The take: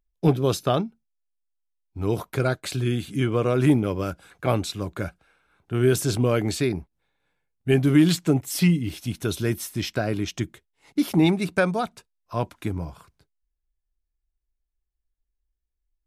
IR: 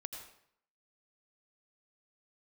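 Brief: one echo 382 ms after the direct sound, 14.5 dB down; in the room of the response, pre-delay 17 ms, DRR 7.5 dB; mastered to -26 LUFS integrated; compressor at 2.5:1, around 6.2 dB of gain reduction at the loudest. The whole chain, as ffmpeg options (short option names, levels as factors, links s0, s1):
-filter_complex "[0:a]acompressor=threshold=0.0794:ratio=2.5,aecho=1:1:382:0.188,asplit=2[s0][s1];[1:a]atrim=start_sample=2205,adelay=17[s2];[s1][s2]afir=irnorm=-1:irlink=0,volume=0.562[s3];[s0][s3]amix=inputs=2:normalize=0,volume=1.12"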